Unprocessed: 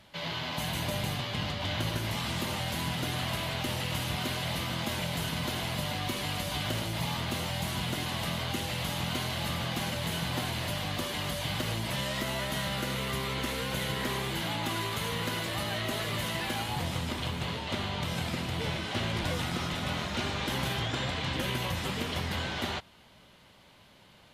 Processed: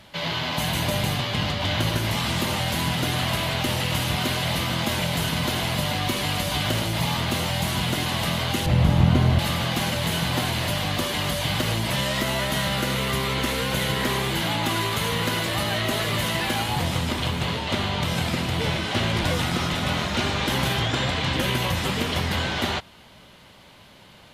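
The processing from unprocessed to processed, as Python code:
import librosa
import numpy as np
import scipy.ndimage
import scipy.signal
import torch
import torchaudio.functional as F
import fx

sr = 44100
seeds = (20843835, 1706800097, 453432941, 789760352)

y = fx.tilt_eq(x, sr, slope=-3.5, at=(8.66, 9.39))
y = y * librosa.db_to_amplitude(8.0)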